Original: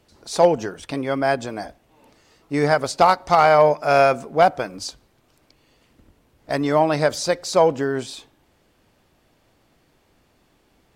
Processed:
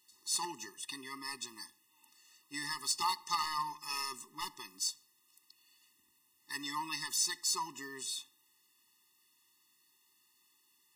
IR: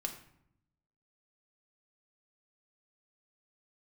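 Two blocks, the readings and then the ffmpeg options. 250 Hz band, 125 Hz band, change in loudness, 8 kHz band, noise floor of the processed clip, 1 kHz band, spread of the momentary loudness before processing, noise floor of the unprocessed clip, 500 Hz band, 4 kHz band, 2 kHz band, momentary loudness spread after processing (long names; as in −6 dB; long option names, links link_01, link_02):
−24.5 dB, −30.5 dB, −17.5 dB, −1.0 dB, −72 dBFS, −19.5 dB, 14 LU, −62 dBFS, −39.0 dB, −5.0 dB, −16.5 dB, 11 LU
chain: -filter_complex "[0:a]aderivative,asoftclip=type=tanh:threshold=-22dB,asplit=2[link_01][link_02];[1:a]atrim=start_sample=2205,afade=type=out:start_time=0.37:duration=0.01,atrim=end_sample=16758[link_03];[link_02][link_03]afir=irnorm=-1:irlink=0,volume=-12dB[link_04];[link_01][link_04]amix=inputs=2:normalize=0,afftfilt=real='re*eq(mod(floor(b*sr/1024/420),2),0)':imag='im*eq(mod(floor(b*sr/1024/420),2),0)':win_size=1024:overlap=0.75,volume=2dB"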